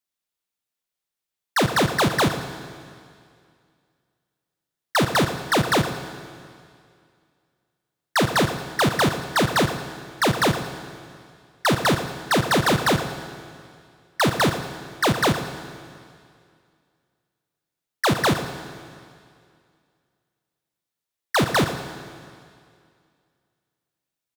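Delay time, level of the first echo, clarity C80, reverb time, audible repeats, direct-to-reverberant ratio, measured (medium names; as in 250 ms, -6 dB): 114 ms, -12.0 dB, 8.5 dB, 2.3 s, 2, 7.5 dB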